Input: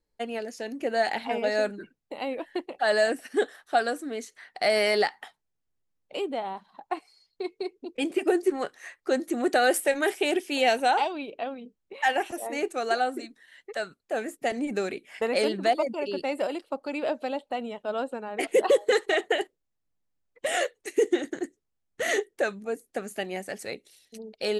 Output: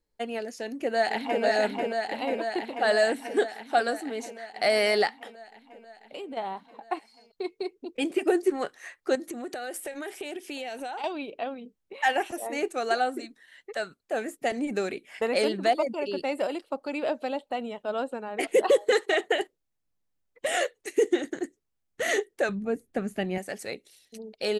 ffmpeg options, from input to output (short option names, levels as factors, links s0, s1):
-filter_complex "[0:a]asplit=2[s0][s1];[s1]afade=t=in:st=0.61:d=0.01,afade=t=out:st=1.43:d=0.01,aecho=0:1:490|980|1470|1960|2450|2940|3430|3920|4410|4900|5390|5880:0.749894|0.562421|0.421815|0.316362|0.237271|0.177953|0.133465|0.100099|0.0750741|0.0563056|0.0422292|0.0316719[s2];[s0][s2]amix=inputs=2:normalize=0,asettb=1/sr,asplit=3[s3][s4][s5];[s3]atrim=end=5.104[s6];[s4]atrim=start=5.1:end=6.37,asetpts=PTS-STARTPTS,afade=t=in:d=0.004:c=qsin,afade=t=out:st=1.266:d=0.004:c=qsin,acompressor=threshold=0.0178:ratio=6:attack=3.2:release=140:knee=1:detection=peak[s7];[s5]atrim=start=6.366[s8];[s6][s7]acrossfade=d=0.004:c1=hsin:c2=qsin[s9];[s9][s8]acrossfade=d=0.004:c1=qsin:c2=hsin,asettb=1/sr,asplit=3[s10][s11][s12];[s10]atrim=end=9.154[s13];[s11]atrim=start=9.15:end=11.04,asetpts=PTS-STARTPTS,afade=t=in:d=0.004:c=qsin,afade=t=out:st=1.886:d=0.004:c=qsin,acompressor=threshold=0.0251:ratio=10:attack=3.2:release=140:knee=1:detection=peak[s14];[s12]atrim=start=11.036[s15];[s13][s14]acrossfade=d=0.004:c1=hsin:c2=qsin[s16];[s16][s15]acrossfade=d=0.004:c1=qsin:c2=hsin,asettb=1/sr,asplit=3[s17][s18][s19];[s17]atrim=end=18.924[s20];[s18]atrim=start=18.92:end=19.4,asetpts=PTS-STARTPTS,afade=t=in:d=0.004:c=qsin,afade=t=out:st=0.476:d=0.004:c=qsin,highpass=95[s21];[s19]atrim=start=19.396[s22];[s20][s21]acrossfade=d=0.004:c1=hsin:c2=qsin[s23];[s23][s22]acrossfade=d=0.004:c1=qsin:c2=hsin,asettb=1/sr,asplit=3[s24][s25][s26];[s24]atrim=end=22.494[s27];[s25]atrim=start=22.49:end=23.38,asetpts=PTS-STARTPTS,afade=t=in:d=0.004:c=qsin,afade=t=out:st=0.886:d=0.004:c=qsin,bass=f=250:g=14,treble=f=4000:g=-8[s28];[s26]atrim=start=23.376[s29];[s27][s28]acrossfade=d=0.004:c1=hsin:c2=qsin[s30];[s30][s29]acrossfade=d=0.004:c1=qsin:c2=hsin"